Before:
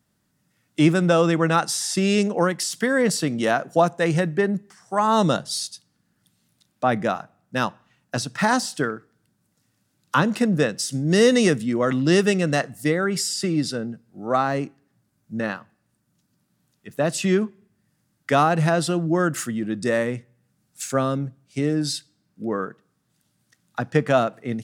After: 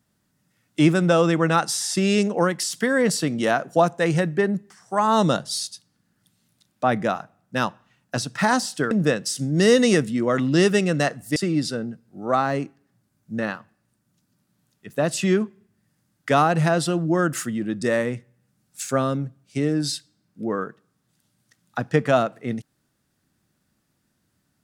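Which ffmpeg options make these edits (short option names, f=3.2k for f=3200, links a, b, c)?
-filter_complex "[0:a]asplit=3[a][b][c];[a]atrim=end=8.912[d];[b]atrim=start=10.438:end=12.892[e];[c]atrim=start=13.368[f];[d][e]acrossfade=d=0.004:c1=hsin:c2=hsin[g];[g][f]acrossfade=d=0.004:c1=hsin:c2=hsin"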